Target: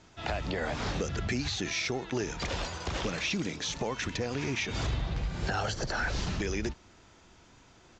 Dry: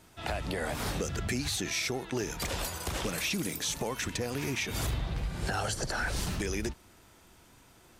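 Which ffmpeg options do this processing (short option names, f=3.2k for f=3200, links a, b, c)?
-filter_complex "[0:a]acrossover=split=6100[a][b];[b]acompressor=threshold=-50dB:ratio=4:attack=1:release=60[c];[a][c]amix=inputs=2:normalize=0,aresample=16000,aresample=44100,volume=1dB"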